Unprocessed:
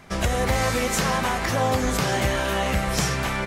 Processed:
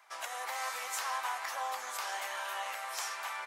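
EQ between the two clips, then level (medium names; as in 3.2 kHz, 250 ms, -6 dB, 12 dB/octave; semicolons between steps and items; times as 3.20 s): ladder high-pass 750 Hz, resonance 40%; treble shelf 9.1 kHz +6.5 dB; -5.5 dB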